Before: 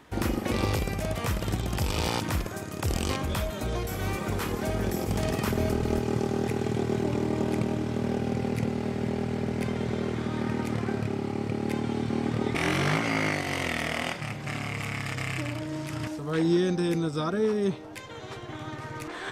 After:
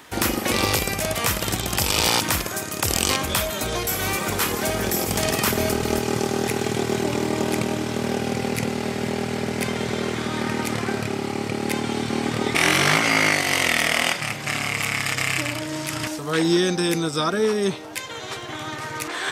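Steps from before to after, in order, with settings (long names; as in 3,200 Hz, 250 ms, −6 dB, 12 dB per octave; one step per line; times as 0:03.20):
spectral tilt +2.5 dB per octave
level +8 dB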